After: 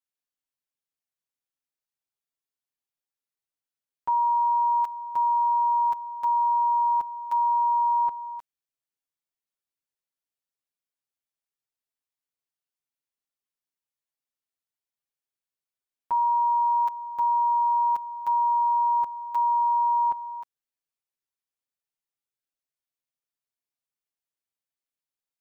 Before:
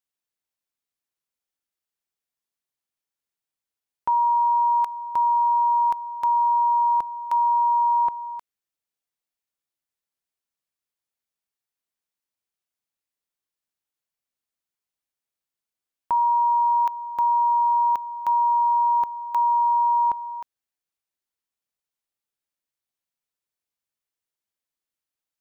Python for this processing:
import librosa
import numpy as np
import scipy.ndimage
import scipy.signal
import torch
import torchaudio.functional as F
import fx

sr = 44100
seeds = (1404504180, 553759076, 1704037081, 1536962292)

y = x + 0.95 * np.pad(x, (int(7.4 * sr / 1000.0), 0))[:len(x)]
y = y * 10.0 ** (-8.5 / 20.0)